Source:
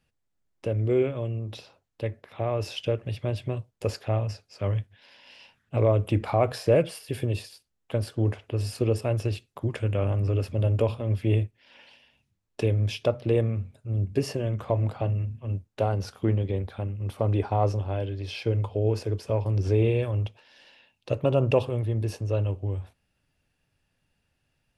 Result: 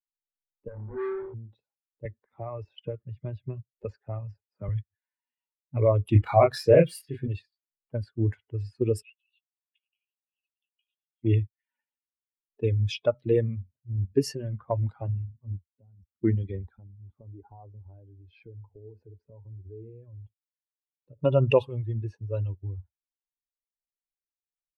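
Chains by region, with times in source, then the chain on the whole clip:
0.68–1.34 s: bass shelf 280 Hz -4 dB + flutter echo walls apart 4.9 m, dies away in 1.1 s + valve stage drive 28 dB, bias 0.7
2.05–4.69 s: AM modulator 46 Hz, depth 15% + three bands compressed up and down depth 70%
6.10–7.28 s: band-stop 880 Hz, Q 21 + hysteresis with a dead band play -44 dBFS + doubling 29 ms -2.5 dB
9.02–11.23 s: ladder high-pass 2.6 kHz, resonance 65% + resonant high shelf 5 kHz -9 dB, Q 3 + doubling 17 ms -10 dB
15.73–16.22 s: high-order bell 740 Hz -8.5 dB 2.5 oct + level held to a coarse grid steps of 19 dB + high-pass 49 Hz
16.77–21.19 s: compression 3:1, threshold -33 dBFS + expander -49 dBFS
whole clip: expander on every frequency bin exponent 2; level-controlled noise filter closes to 390 Hz, open at -26.5 dBFS; trim +5 dB

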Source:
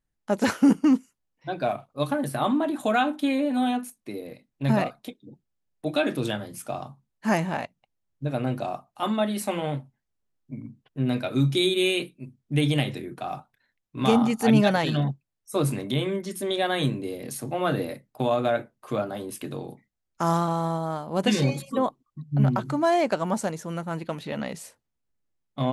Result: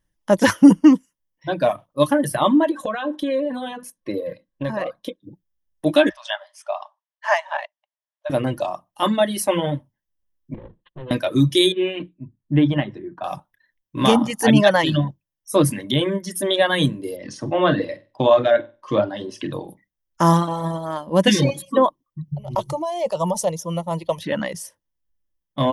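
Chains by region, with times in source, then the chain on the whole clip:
2.71–5.23 s: treble shelf 7.3 kHz -10.5 dB + compression 16:1, threshold -28 dBFS + small resonant body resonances 520/1100/1600/4000 Hz, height 10 dB
6.09–8.30 s: brick-wall FIR high-pass 570 Hz + distance through air 120 m
10.54–11.11 s: comb filter that takes the minimum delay 5.7 ms + Chebyshev low-pass 4.2 kHz, order 8 + compression 8:1, threshold -37 dBFS
11.72–13.24 s: low-pass 1.6 kHz + peaking EQ 520 Hz -9 dB 0.29 oct
17.16–19.53 s: low-pass 5.7 kHz 24 dB/octave + flutter echo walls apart 8.1 m, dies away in 0.32 s
22.28–24.22 s: compressor with a negative ratio -26 dBFS + static phaser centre 660 Hz, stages 4
whole clip: reverb removal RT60 1.3 s; rippled EQ curve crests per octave 1.2, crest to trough 8 dB; trim +7.5 dB

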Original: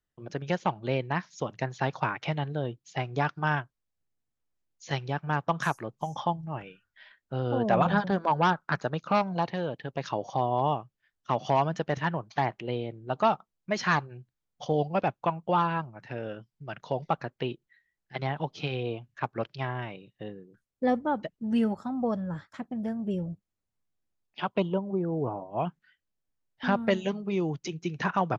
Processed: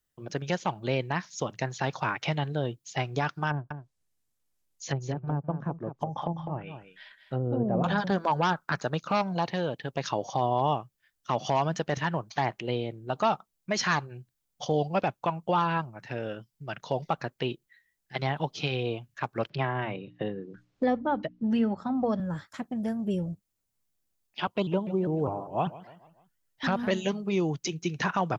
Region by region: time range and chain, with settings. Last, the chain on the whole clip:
3.50–7.84 s: low-pass that closes with the level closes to 440 Hz, closed at -27 dBFS + delay 204 ms -9.5 dB
19.50–22.20 s: distance through air 190 m + hum notches 60/120/180/240/300 Hz + three bands compressed up and down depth 70%
24.47–26.91 s: feedback delay 148 ms, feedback 49%, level -18 dB + vibrato with a chosen wave saw up 5 Hz, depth 160 cents
whole clip: peak limiter -17.5 dBFS; treble shelf 5.1 kHz +11.5 dB; trim +1.5 dB

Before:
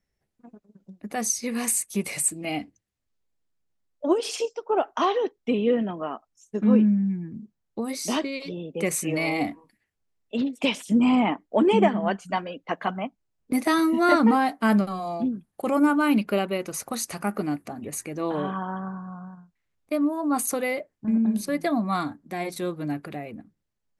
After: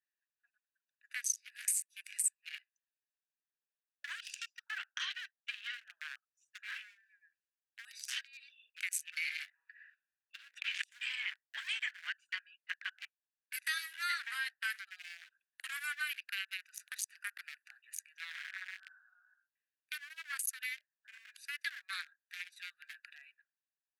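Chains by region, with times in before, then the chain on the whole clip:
9.50–10.84 s: low-pass 1.6 kHz + decay stretcher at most 40 dB/s
whole clip: local Wiener filter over 41 samples; Chebyshev high-pass 1.6 kHz, order 5; compression 2:1, threshold -55 dBFS; trim +10.5 dB

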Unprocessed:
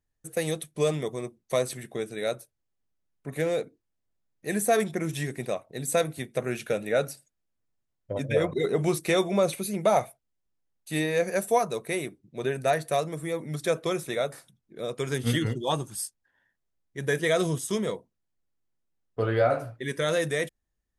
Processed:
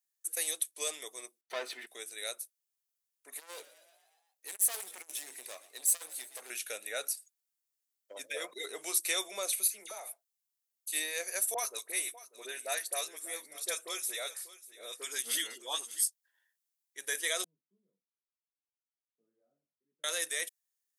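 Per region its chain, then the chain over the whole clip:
1.41–1.87 s: waveshaping leveller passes 3 + distance through air 330 m + comb of notches 550 Hz
3.33–6.50 s: overload inside the chain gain 27.5 dB + frequency-shifting echo 120 ms, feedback 63%, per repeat +53 Hz, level -18.5 dB + transformer saturation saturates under 370 Hz
9.68–10.93 s: compression, threshold -28 dBFS + phase dispersion lows, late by 60 ms, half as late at 1.5 kHz
11.54–16.04 s: phase dispersion highs, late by 44 ms, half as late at 1.4 kHz + delay 592 ms -17.5 dB
17.44–20.04 s: Butterworth band-pass 160 Hz, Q 2.7 + chorus 1.2 Hz, delay 16.5 ms, depth 4.9 ms
whole clip: high-pass 290 Hz 24 dB/octave; differentiator; trim +5.5 dB

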